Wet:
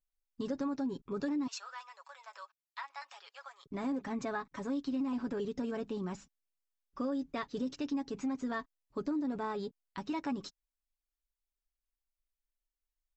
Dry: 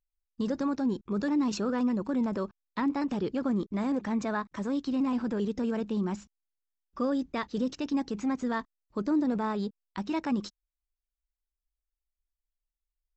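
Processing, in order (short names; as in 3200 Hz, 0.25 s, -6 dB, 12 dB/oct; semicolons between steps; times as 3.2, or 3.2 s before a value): 1.47–3.66 Bessel high-pass 1300 Hz, order 8; comb 7.2 ms, depth 55%; compressor, threshold -26 dBFS, peak gain reduction 6.5 dB; gain -5 dB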